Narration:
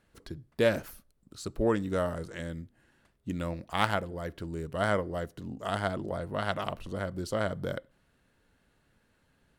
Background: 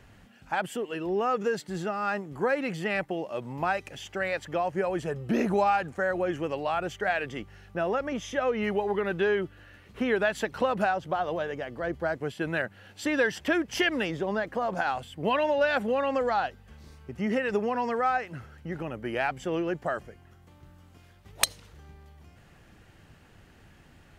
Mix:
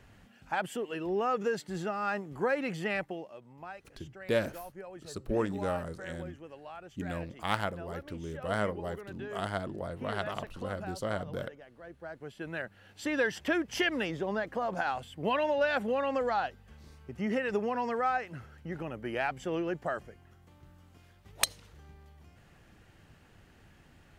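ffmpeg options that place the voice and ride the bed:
-filter_complex "[0:a]adelay=3700,volume=-3.5dB[a];[1:a]volume=10.5dB,afade=t=out:st=2.91:d=0.48:silence=0.199526,afade=t=in:st=11.94:d=1.35:silence=0.211349[b];[a][b]amix=inputs=2:normalize=0"

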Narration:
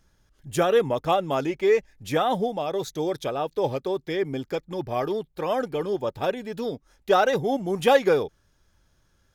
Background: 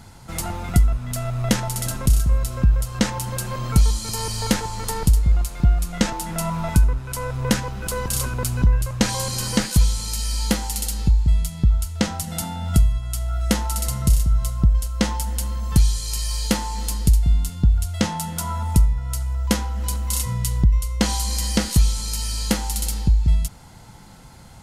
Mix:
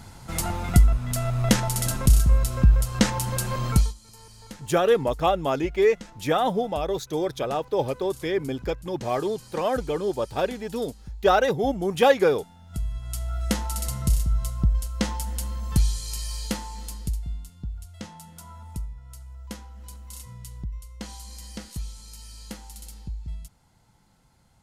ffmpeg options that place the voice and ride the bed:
-filter_complex "[0:a]adelay=4150,volume=0.5dB[a];[1:a]volume=17dB,afade=t=out:st=3.69:d=0.25:silence=0.0794328,afade=t=in:st=12.69:d=0.45:silence=0.141254,afade=t=out:st=15.88:d=1.59:silence=0.237137[b];[a][b]amix=inputs=2:normalize=0"

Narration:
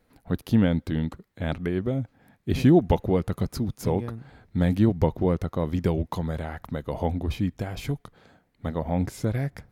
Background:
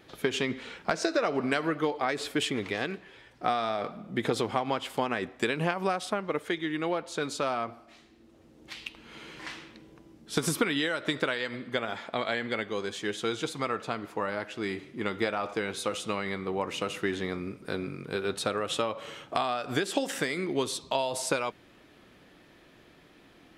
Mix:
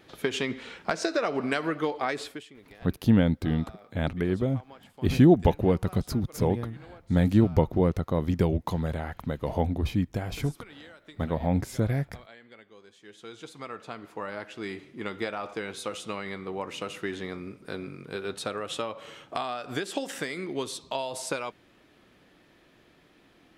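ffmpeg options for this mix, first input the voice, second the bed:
-filter_complex "[0:a]adelay=2550,volume=0dB[a];[1:a]volume=17dB,afade=t=out:st=2.15:d=0.28:silence=0.1,afade=t=in:st=13:d=1.47:silence=0.141254[b];[a][b]amix=inputs=2:normalize=0"

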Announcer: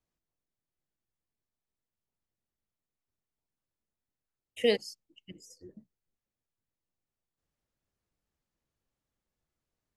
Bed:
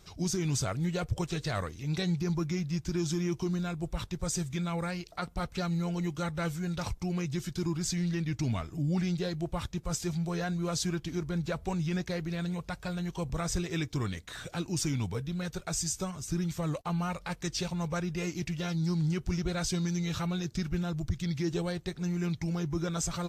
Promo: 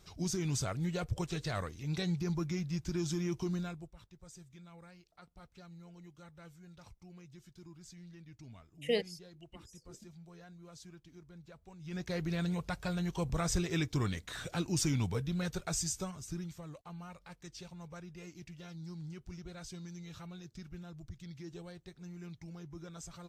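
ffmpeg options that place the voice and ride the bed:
-filter_complex "[0:a]adelay=4250,volume=-5.5dB[a];[1:a]volume=17dB,afade=t=out:st=3.58:d=0.33:silence=0.133352,afade=t=in:st=11.8:d=0.45:silence=0.0891251,afade=t=out:st=15.49:d=1.16:silence=0.177828[b];[a][b]amix=inputs=2:normalize=0"

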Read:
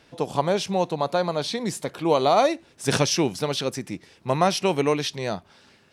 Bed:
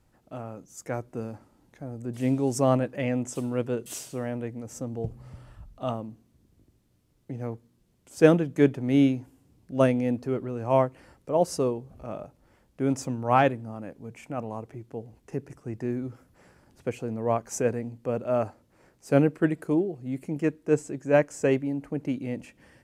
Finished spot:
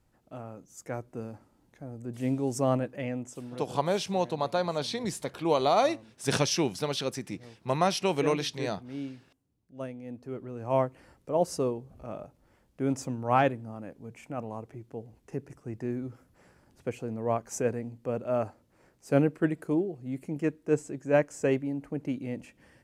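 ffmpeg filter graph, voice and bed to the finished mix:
-filter_complex "[0:a]adelay=3400,volume=-5dB[a];[1:a]volume=10dB,afade=t=out:st=2.84:d=0.86:silence=0.223872,afade=t=in:st=10.02:d=0.89:silence=0.199526[b];[a][b]amix=inputs=2:normalize=0"

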